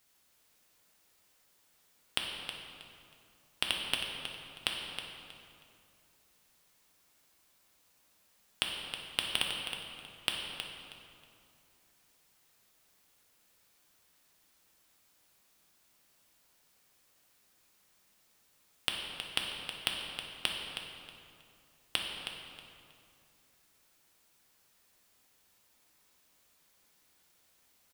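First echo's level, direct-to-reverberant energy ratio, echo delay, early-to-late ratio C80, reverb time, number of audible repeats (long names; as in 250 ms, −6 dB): −9.0 dB, −1.0 dB, 318 ms, 2.0 dB, 2.5 s, 2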